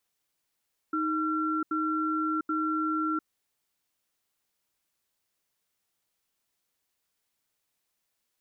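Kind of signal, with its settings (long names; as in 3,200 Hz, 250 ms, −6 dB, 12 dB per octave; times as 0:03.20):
tone pair in a cadence 313 Hz, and 1,360 Hz, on 0.70 s, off 0.08 s, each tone −28.5 dBFS 2.26 s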